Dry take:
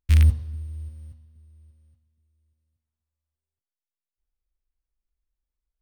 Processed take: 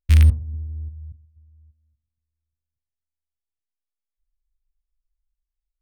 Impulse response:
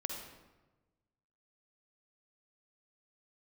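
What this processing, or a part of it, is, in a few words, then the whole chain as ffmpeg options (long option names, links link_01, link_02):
voice memo with heavy noise removal: -af "anlmdn=0.631,dynaudnorm=framelen=430:gausssize=5:maxgain=5dB,volume=3dB"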